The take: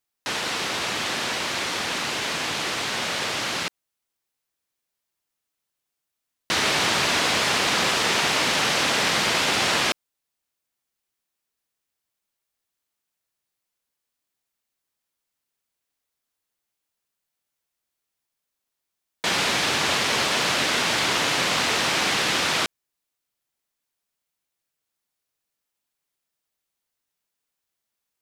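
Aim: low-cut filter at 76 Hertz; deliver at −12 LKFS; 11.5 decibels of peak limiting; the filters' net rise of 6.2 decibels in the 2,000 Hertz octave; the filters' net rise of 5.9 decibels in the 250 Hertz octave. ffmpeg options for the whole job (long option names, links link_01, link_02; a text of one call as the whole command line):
ffmpeg -i in.wav -af "highpass=76,equalizer=frequency=250:width_type=o:gain=7.5,equalizer=frequency=2000:width_type=o:gain=7.5,volume=11dB,alimiter=limit=-4.5dB:level=0:latency=1" out.wav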